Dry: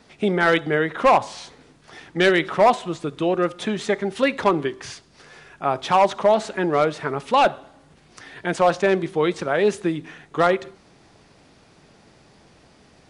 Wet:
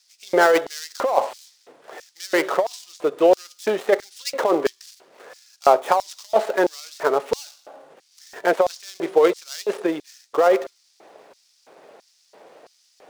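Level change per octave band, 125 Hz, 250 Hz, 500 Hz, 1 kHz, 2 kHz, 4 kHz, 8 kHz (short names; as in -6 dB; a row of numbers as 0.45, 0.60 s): under -15 dB, -3.5 dB, +1.0 dB, -2.5 dB, -3.0 dB, -3.0 dB, +3.5 dB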